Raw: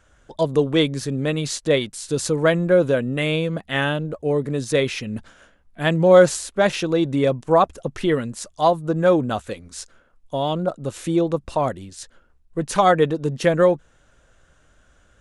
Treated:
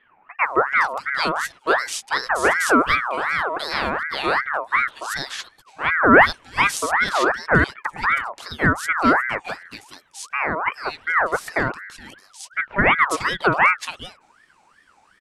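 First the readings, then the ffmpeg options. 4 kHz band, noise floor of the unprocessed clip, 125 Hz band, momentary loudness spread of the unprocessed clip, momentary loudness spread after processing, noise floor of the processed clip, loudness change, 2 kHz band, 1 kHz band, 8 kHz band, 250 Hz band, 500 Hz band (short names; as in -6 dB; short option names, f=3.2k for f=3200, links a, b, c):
0.0 dB, -58 dBFS, -7.5 dB, 13 LU, 14 LU, -58 dBFS, +0.5 dB, +10.5 dB, +4.5 dB, -1.0 dB, -4.0 dB, -7.0 dB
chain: -filter_complex "[0:a]acrossover=split=1500[a][b];[b]adelay=420[c];[a][c]amix=inputs=2:normalize=0,aeval=exprs='val(0)*sin(2*PI*1300*n/s+1300*0.4/2.7*sin(2*PI*2.7*n/s))':c=same,volume=2.5dB"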